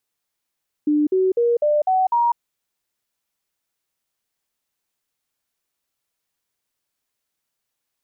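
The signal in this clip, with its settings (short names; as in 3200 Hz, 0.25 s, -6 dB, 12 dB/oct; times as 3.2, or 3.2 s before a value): stepped sine 298 Hz up, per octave 3, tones 6, 0.20 s, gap 0.05 s -14.5 dBFS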